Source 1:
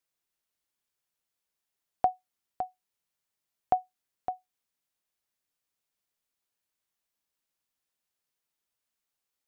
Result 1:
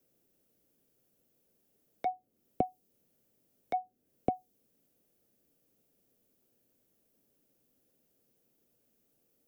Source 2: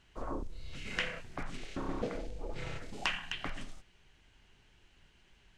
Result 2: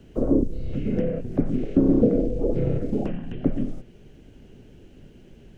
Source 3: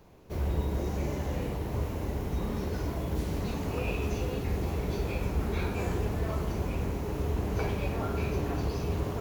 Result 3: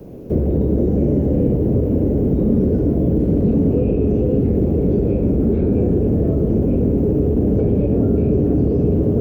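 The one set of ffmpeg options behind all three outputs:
-filter_complex "[0:a]acrossover=split=3100[a][b];[b]acompressor=threshold=-58dB:ratio=4:attack=1:release=60[c];[a][c]amix=inputs=2:normalize=0,aeval=exprs='0.224*sin(PI/2*3.16*val(0)/0.224)':c=same,acrossover=split=220|600|3200[d][e][f][g];[d]acompressor=threshold=-21dB:ratio=4[h];[e]acompressor=threshold=-27dB:ratio=4[i];[f]acompressor=threshold=-41dB:ratio=4[j];[g]acompressor=threshold=-56dB:ratio=4[k];[h][i][j][k]amix=inputs=4:normalize=0,equalizer=f=125:t=o:w=1:g=5,equalizer=f=250:t=o:w=1:g=10,equalizer=f=500:t=o:w=1:g=9,equalizer=f=1k:t=o:w=1:g=-12,equalizer=f=2k:t=o:w=1:g=-8,equalizer=f=4k:t=o:w=1:g=-9,equalizer=f=8k:t=o:w=1:g=-7"

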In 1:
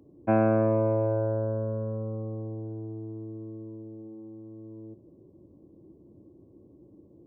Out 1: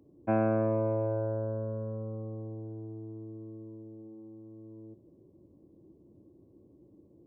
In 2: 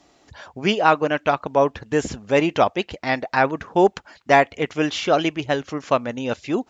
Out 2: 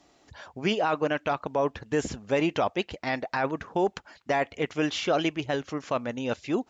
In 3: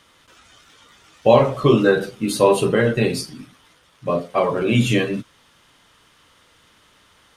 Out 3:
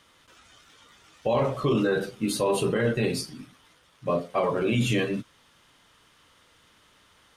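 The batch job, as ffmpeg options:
-af "alimiter=limit=-11dB:level=0:latency=1:release=19,volume=-4.5dB"

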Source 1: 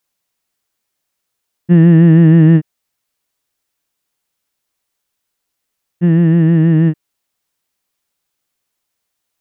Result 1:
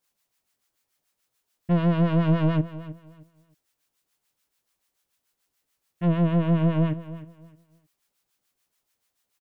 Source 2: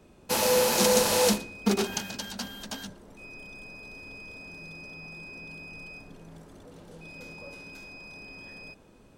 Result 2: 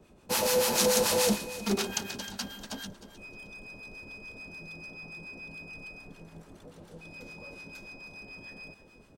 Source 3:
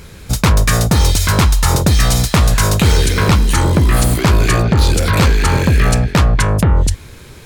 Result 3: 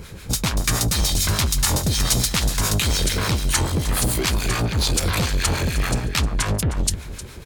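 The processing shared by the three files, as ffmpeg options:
-filter_complex "[0:a]acrossover=split=2600[a][b];[a]asoftclip=type=tanh:threshold=-18.5dB[c];[c][b]amix=inputs=2:normalize=0,acrossover=split=880[d][e];[d]aeval=exprs='val(0)*(1-0.7/2+0.7/2*cos(2*PI*6.9*n/s))':c=same[f];[e]aeval=exprs='val(0)*(1-0.7/2-0.7/2*cos(2*PI*6.9*n/s))':c=same[g];[f][g]amix=inputs=2:normalize=0,aecho=1:1:310|620|930:0.178|0.0427|0.0102,volume=1.5dB"

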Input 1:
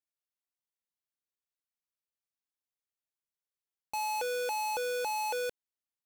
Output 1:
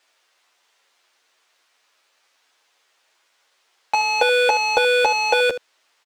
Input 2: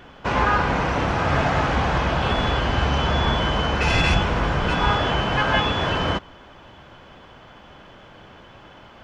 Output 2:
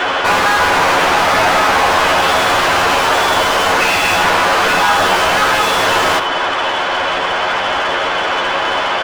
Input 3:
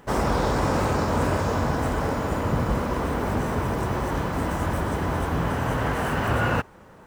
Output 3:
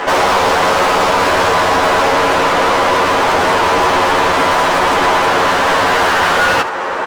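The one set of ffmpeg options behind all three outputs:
-filter_complex "[0:a]acrossover=split=290 7900:gain=0.0891 1 0.251[a][b][c];[a][b][c]amix=inputs=3:normalize=0,asplit=2[d][e];[e]acompressor=threshold=-34dB:ratio=6,volume=-2dB[f];[d][f]amix=inputs=2:normalize=0,asplit=2[g][h];[h]highpass=f=720:p=1,volume=38dB,asoftclip=type=tanh:threshold=-6.5dB[i];[g][i]amix=inputs=2:normalize=0,lowpass=f=3.3k:p=1,volume=-6dB,aecho=1:1:11|79:0.708|0.224,volume=-1dB"

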